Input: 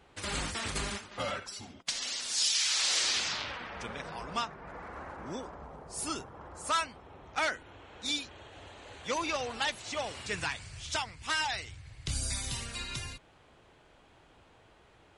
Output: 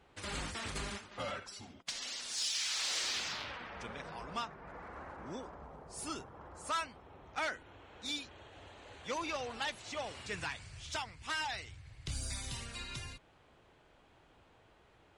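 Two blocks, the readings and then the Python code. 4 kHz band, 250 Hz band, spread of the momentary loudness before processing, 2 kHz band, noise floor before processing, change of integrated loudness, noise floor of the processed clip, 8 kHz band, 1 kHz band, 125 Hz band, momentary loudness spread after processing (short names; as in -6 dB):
-6.5 dB, -4.5 dB, 18 LU, -5.5 dB, -61 dBFS, -6.5 dB, -65 dBFS, -7.5 dB, -5.0 dB, -4.5 dB, 15 LU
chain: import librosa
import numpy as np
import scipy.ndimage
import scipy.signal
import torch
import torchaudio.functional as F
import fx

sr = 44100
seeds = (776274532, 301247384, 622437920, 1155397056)

p1 = fx.high_shelf(x, sr, hz=5200.0, db=-4.0)
p2 = 10.0 ** (-32.5 / 20.0) * np.tanh(p1 / 10.0 ** (-32.5 / 20.0))
p3 = p1 + F.gain(torch.from_numpy(p2), -7.5).numpy()
y = F.gain(torch.from_numpy(p3), -7.0).numpy()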